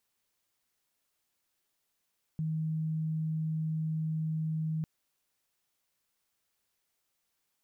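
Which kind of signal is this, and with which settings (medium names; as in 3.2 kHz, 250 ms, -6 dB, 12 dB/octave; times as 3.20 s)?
tone sine 158 Hz -29.5 dBFS 2.45 s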